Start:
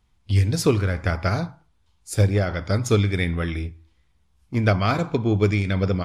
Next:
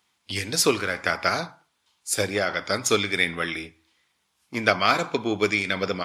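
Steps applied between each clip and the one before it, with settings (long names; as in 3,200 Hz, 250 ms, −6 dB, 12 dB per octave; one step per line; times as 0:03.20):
high-pass filter 240 Hz 12 dB per octave
tilt shelving filter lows −5.5 dB, about 840 Hz
level +2 dB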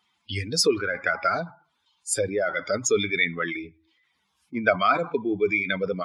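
expanding power law on the bin magnitudes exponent 2.1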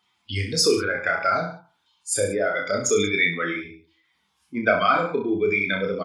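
reverse bouncing-ball delay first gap 30 ms, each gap 1.1×, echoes 5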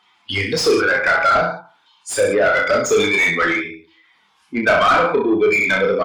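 mid-hump overdrive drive 22 dB, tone 1,900 Hz, clips at −5 dBFS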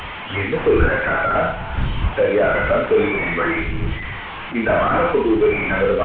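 linear delta modulator 16 kbit/s, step −24 dBFS
wind on the microphone 95 Hz −27 dBFS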